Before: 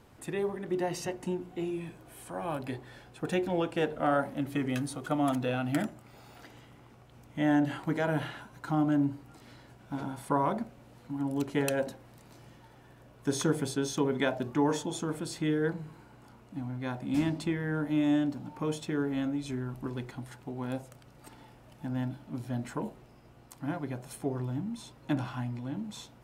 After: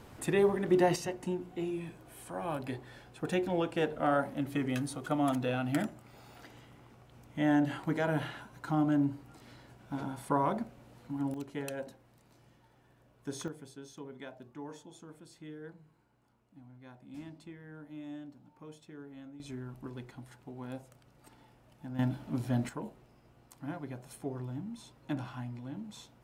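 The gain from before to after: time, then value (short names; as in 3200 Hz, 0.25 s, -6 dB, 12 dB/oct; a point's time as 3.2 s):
+5.5 dB
from 0.96 s -1.5 dB
from 11.34 s -9.5 dB
from 13.48 s -17.5 dB
from 19.4 s -7 dB
from 21.99 s +3.5 dB
from 22.69 s -5.5 dB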